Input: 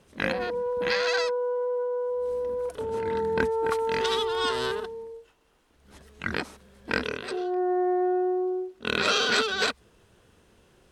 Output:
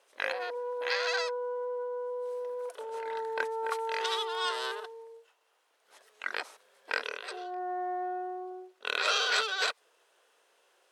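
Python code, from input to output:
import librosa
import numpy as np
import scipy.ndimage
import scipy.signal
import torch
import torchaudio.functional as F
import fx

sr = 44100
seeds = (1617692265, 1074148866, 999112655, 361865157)

y = scipy.signal.sosfilt(scipy.signal.butter(4, 510.0, 'highpass', fs=sr, output='sos'), x)
y = F.gain(torch.from_numpy(y), -3.5).numpy()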